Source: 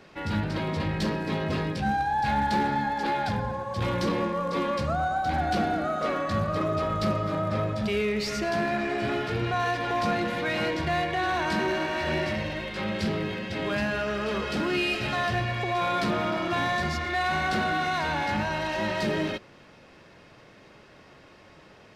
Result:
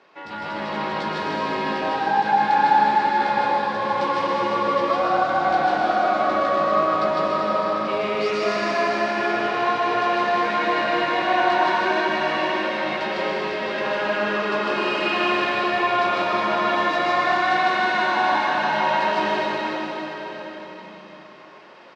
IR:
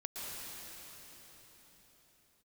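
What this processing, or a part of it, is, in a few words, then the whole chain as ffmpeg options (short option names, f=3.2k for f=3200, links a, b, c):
station announcement: -filter_complex "[0:a]highpass=350,lowpass=4.8k,equalizer=f=1k:t=o:w=0.54:g=6,aecho=1:1:154.5|244.9:0.891|0.282[a];[1:a]atrim=start_sample=2205[b];[a][b]afir=irnorm=-1:irlink=0,volume=2dB"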